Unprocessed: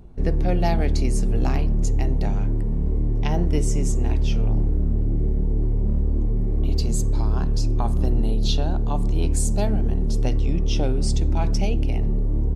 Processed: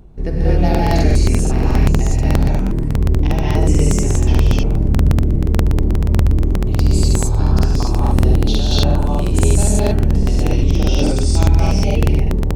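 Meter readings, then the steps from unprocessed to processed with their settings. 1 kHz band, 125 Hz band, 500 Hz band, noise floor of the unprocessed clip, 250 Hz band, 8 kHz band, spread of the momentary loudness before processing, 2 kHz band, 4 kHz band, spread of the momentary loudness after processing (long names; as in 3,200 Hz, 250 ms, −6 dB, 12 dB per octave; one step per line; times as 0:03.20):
+8.0 dB, +8.5 dB, +8.0 dB, −21 dBFS, +8.0 dB, +8.0 dB, 2 LU, +10.0 dB, +8.5 dB, 3 LU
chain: reverb whose tail is shaped and stops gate 290 ms rising, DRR −6.5 dB
reversed playback
upward compression, threshold −23 dBFS
reversed playback
regular buffer underruns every 0.12 s, samples 2,048, repeat, from 0:00.70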